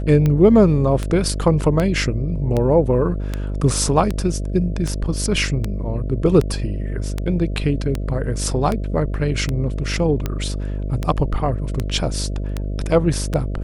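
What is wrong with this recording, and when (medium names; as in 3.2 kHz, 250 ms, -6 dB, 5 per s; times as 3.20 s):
buzz 50 Hz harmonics 13 -24 dBFS
tick 78 rpm -9 dBFS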